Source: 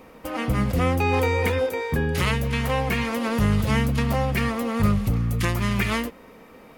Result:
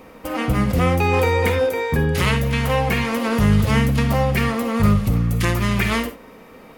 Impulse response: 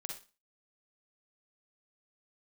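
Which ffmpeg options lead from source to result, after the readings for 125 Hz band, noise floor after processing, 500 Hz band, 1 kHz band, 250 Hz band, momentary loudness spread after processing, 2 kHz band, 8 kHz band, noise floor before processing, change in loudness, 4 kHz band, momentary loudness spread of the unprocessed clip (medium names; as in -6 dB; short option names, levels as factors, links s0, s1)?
+4.5 dB, -44 dBFS, +4.5 dB, +4.0 dB, +4.0 dB, 4 LU, +4.0 dB, +4.0 dB, -48 dBFS, +4.0 dB, +4.0 dB, 4 LU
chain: -filter_complex "[0:a]asplit=2[s0][s1];[1:a]atrim=start_sample=2205,atrim=end_sample=4410[s2];[s1][s2]afir=irnorm=-1:irlink=0,volume=1.12[s3];[s0][s3]amix=inputs=2:normalize=0,volume=0.891"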